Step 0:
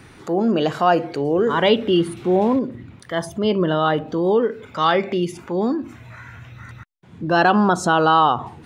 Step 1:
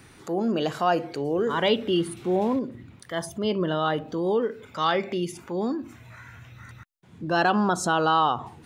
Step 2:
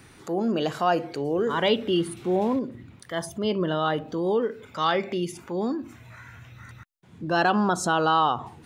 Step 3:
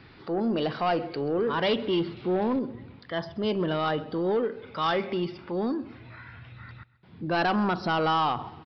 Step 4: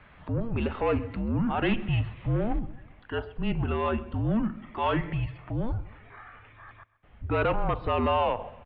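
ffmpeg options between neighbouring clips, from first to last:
-af "highshelf=f=5.3k:g=8.5,volume=-6.5dB"
-af anull
-af "aresample=11025,asoftclip=type=tanh:threshold=-19dB,aresample=44100,aecho=1:1:132|264|396|528:0.0891|0.0481|0.026|0.014"
-af "highpass=f=170:t=q:w=0.5412,highpass=f=170:t=q:w=1.307,lowpass=f=3.2k:t=q:w=0.5176,lowpass=f=3.2k:t=q:w=0.7071,lowpass=f=3.2k:t=q:w=1.932,afreqshift=-230"

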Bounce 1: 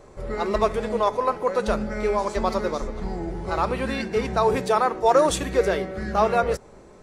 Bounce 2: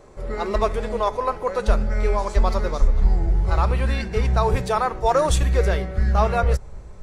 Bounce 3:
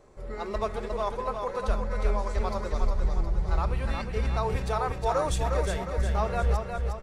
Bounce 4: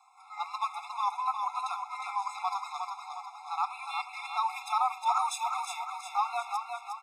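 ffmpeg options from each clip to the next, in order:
-af "asubboost=boost=11:cutoff=86"
-af "aecho=1:1:359|718|1077|1436|1795|2154:0.562|0.276|0.135|0.0662|0.0324|0.0159,volume=-8.5dB"
-af "afftfilt=real='re*eq(mod(floor(b*sr/1024/690),2),1)':imag='im*eq(mod(floor(b*sr/1024/690),2),1)':win_size=1024:overlap=0.75,volume=3.5dB"

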